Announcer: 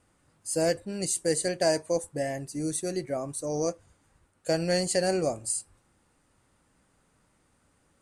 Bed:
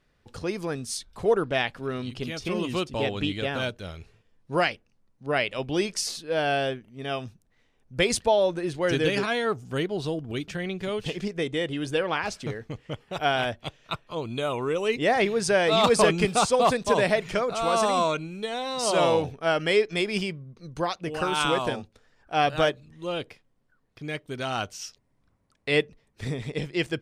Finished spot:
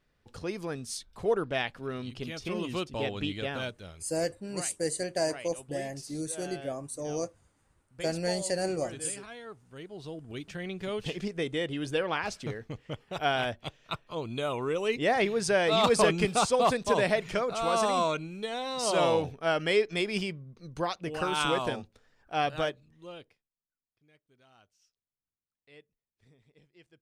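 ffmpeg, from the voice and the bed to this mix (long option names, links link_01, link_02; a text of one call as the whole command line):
ffmpeg -i stem1.wav -i stem2.wav -filter_complex "[0:a]adelay=3550,volume=-4.5dB[link_01];[1:a]volume=10dB,afade=type=out:start_time=3.5:duration=0.89:silence=0.211349,afade=type=in:start_time=9.76:duration=1.27:silence=0.177828,afade=type=out:start_time=22.09:duration=1.4:silence=0.0375837[link_02];[link_01][link_02]amix=inputs=2:normalize=0" out.wav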